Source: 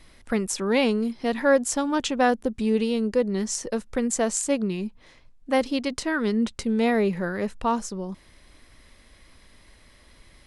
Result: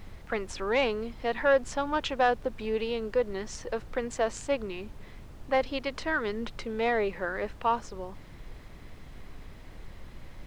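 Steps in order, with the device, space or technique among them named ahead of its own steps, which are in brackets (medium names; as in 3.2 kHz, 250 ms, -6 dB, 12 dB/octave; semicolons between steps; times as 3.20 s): aircraft cabin announcement (band-pass 490–3200 Hz; saturation -13 dBFS, distortion -20 dB; brown noise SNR 11 dB)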